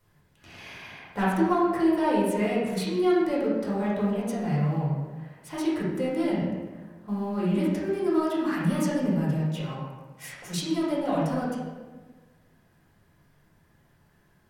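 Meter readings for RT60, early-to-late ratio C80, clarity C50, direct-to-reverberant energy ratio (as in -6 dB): 1.3 s, 2.5 dB, -0.5 dB, -8.5 dB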